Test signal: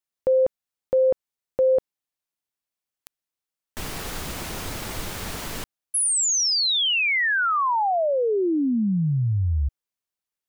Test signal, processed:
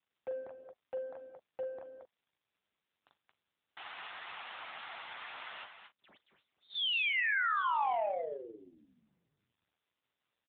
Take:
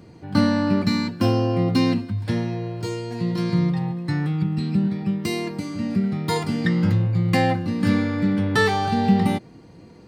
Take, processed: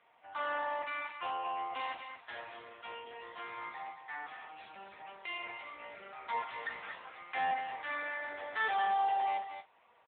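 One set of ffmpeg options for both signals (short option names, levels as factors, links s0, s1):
-filter_complex "[0:a]highpass=f=720:w=0.5412,highpass=f=720:w=1.3066,asoftclip=type=tanh:threshold=0.0596,asplit=2[s0][s1];[s1]adelay=41,volume=0.299[s2];[s0][s2]amix=inputs=2:normalize=0,aecho=1:1:40.82|224.5:0.251|0.398,volume=0.631" -ar 8000 -c:a libopencore_amrnb -b:a 6700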